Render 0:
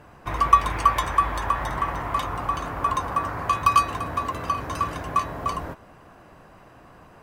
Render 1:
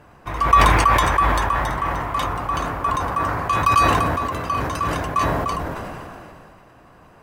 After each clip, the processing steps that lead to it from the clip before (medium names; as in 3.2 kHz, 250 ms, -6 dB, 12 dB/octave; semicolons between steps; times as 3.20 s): decay stretcher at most 23 dB/s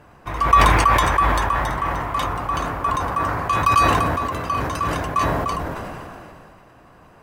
no audible change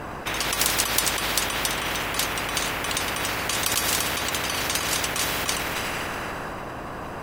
spectrum-flattening compressor 10:1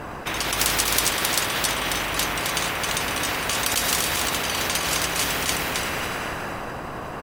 delay 265 ms -4 dB